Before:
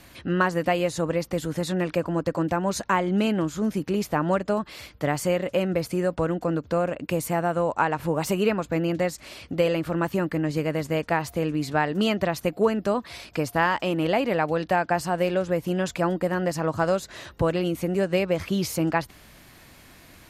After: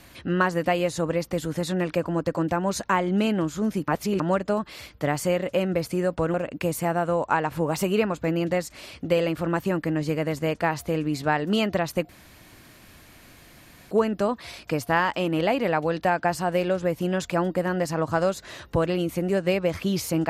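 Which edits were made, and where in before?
3.88–4.20 s: reverse
6.34–6.82 s: delete
12.57 s: insert room tone 1.82 s

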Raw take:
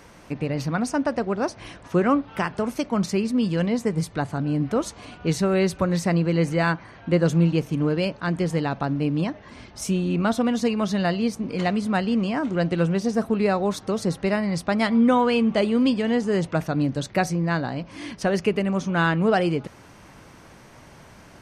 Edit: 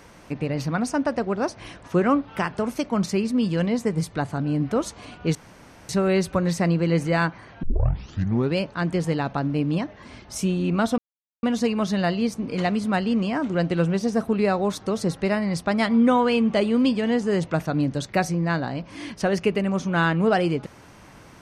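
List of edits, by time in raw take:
5.35 s: insert room tone 0.54 s
7.09 s: tape start 0.93 s
10.44 s: insert silence 0.45 s

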